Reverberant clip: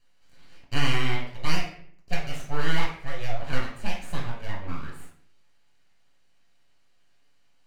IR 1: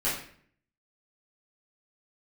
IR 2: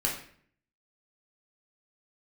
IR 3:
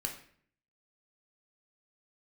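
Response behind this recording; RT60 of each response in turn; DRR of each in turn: 2; 0.55, 0.55, 0.55 seconds; −12.0, −4.0, 0.5 decibels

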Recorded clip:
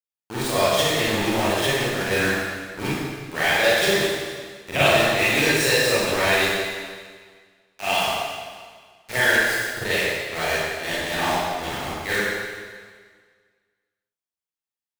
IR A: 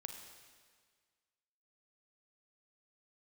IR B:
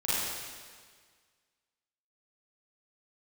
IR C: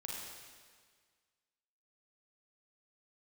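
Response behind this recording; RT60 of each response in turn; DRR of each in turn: B; 1.7, 1.7, 1.7 seconds; 4.5, −11.5, −3.5 decibels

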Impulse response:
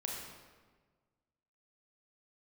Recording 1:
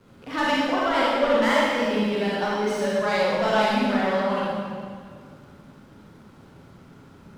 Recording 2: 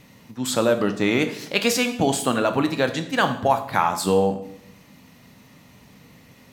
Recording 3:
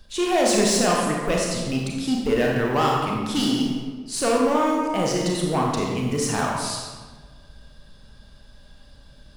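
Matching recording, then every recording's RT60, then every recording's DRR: 3; 2.0, 0.70, 1.4 seconds; −7.5, 7.5, −2.0 decibels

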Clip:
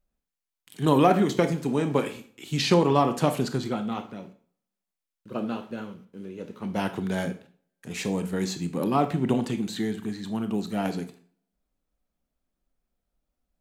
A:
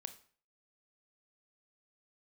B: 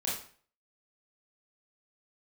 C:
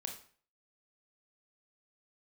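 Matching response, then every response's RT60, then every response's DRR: A; 0.45, 0.45, 0.45 seconds; 9.5, −6.5, 2.5 decibels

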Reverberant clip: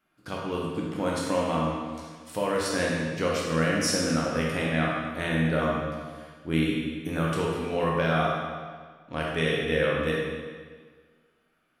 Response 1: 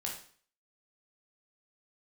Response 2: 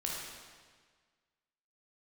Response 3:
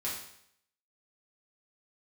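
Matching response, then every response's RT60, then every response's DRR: 2; 0.50, 1.6, 0.70 seconds; −1.5, −3.5, −7.0 decibels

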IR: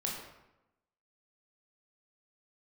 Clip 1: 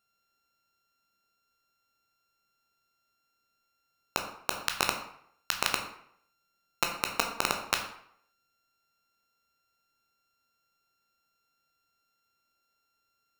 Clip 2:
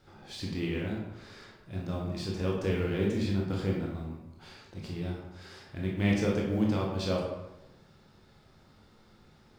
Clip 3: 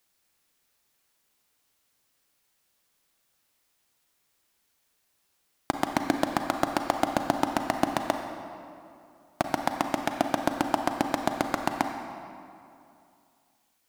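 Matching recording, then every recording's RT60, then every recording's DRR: 2; 0.65, 0.90, 2.6 seconds; 3.0, −2.5, 5.0 decibels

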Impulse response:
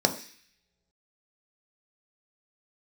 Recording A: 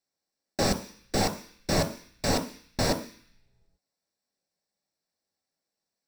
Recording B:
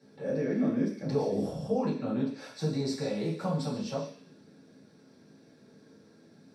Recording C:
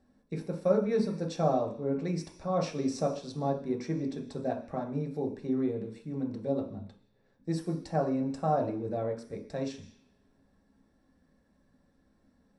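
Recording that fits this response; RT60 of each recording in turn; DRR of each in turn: A; non-exponential decay, non-exponential decay, non-exponential decay; 4.5, −9.5, 0.5 decibels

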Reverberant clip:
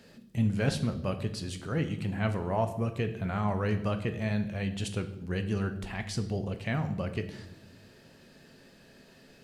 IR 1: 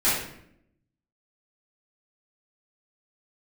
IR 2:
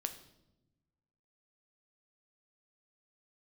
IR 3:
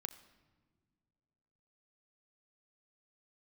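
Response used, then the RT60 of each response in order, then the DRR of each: 2; 0.70 s, 0.95 s, non-exponential decay; −13.5, 7.0, 9.0 decibels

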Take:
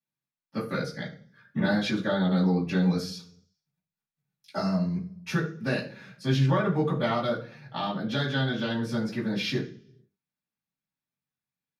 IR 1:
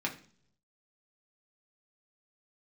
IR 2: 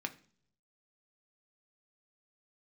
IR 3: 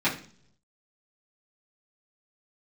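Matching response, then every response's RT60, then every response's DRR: 3; 0.55, 0.55, 0.55 seconds; −1.5, 5.5, −11.0 decibels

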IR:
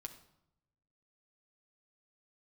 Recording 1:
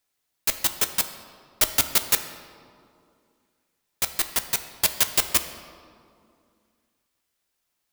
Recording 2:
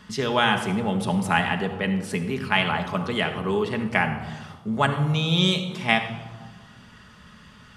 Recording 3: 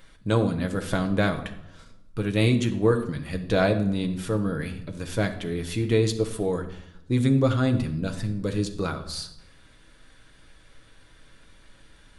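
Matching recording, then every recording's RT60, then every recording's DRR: 3; 2.4, 1.5, 0.80 seconds; 7.0, 4.5, 4.0 decibels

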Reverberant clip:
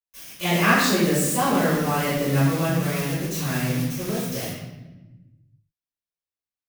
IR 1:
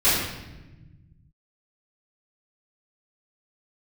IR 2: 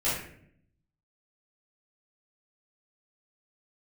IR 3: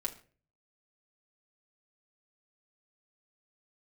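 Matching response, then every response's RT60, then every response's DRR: 1; 1.1, 0.65, 0.45 seconds; −15.5, −10.0, −0.5 decibels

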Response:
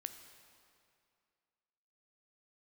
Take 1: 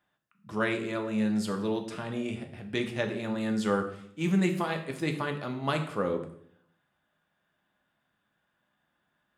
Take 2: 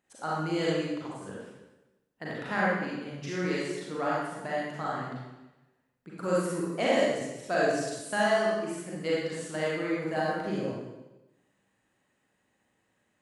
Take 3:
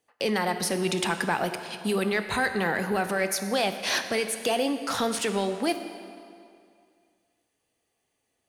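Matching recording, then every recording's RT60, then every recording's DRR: 3; 0.65, 1.0, 2.4 seconds; 4.0, −7.0, 8.0 decibels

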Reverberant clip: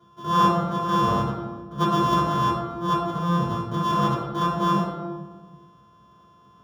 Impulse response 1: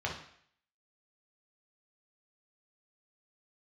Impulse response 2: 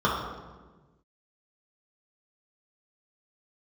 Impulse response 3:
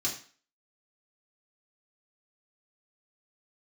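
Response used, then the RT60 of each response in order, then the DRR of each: 2; 0.60, 1.3, 0.40 seconds; −0.5, −6.0, −4.5 decibels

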